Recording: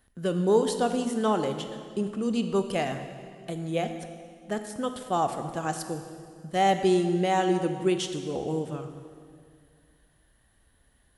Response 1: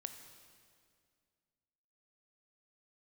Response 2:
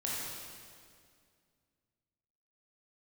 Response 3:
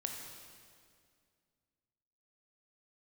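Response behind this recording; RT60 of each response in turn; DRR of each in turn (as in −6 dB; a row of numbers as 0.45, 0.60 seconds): 1; 2.1, 2.2, 2.2 seconds; 7.0, −6.0, 2.0 decibels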